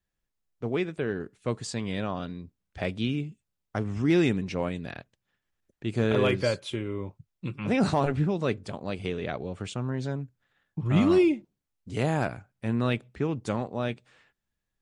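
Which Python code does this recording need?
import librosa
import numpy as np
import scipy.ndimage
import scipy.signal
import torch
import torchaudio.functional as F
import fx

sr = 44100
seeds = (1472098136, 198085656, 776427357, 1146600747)

y = fx.fix_declip(x, sr, threshold_db=-14.0)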